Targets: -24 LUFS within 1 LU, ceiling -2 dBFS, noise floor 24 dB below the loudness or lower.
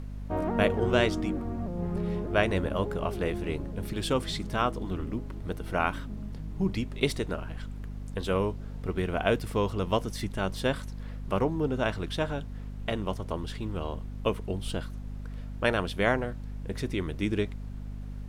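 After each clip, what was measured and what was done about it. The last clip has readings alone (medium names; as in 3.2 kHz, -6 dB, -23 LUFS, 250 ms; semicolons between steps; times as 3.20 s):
hum 50 Hz; highest harmonic 250 Hz; hum level -35 dBFS; noise floor -39 dBFS; noise floor target -55 dBFS; loudness -31.0 LUFS; peak level -8.5 dBFS; loudness target -24.0 LUFS
-> de-hum 50 Hz, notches 5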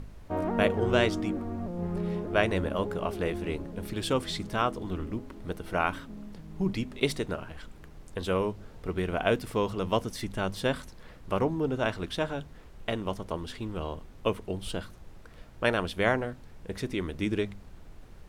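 hum not found; noise floor -49 dBFS; noise floor target -55 dBFS
-> noise print and reduce 6 dB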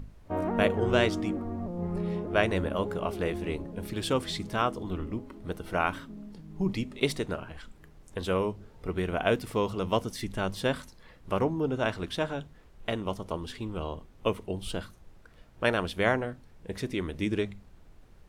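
noise floor -54 dBFS; noise floor target -55 dBFS
-> noise print and reduce 6 dB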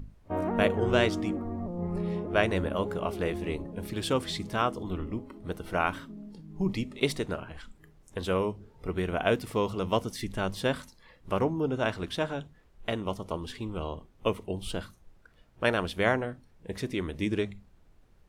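noise floor -59 dBFS; loudness -31.0 LUFS; peak level -8.0 dBFS; loudness target -24.0 LUFS
-> trim +7 dB; peak limiter -2 dBFS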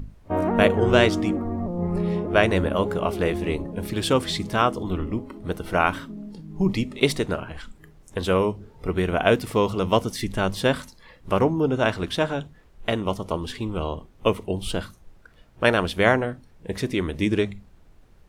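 loudness -24.0 LUFS; peak level -2.0 dBFS; noise floor -52 dBFS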